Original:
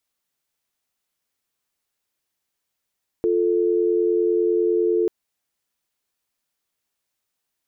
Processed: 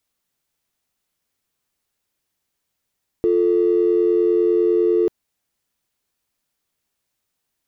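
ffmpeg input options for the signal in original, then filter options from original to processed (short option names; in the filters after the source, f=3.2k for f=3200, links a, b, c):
-f lavfi -i "aevalsrc='0.106*(sin(2*PI*350*t)+sin(2*PI*440*t))':d=1.84:s=44100"
-filter_complex "[0:a]lowshelf=f=300:g=6,asplit=2[a][b];[b]asoftclip=type=hard:threshold=-27.5dB,volume=-11dB[c];[a][c]amix=inputs=2:normalize=0"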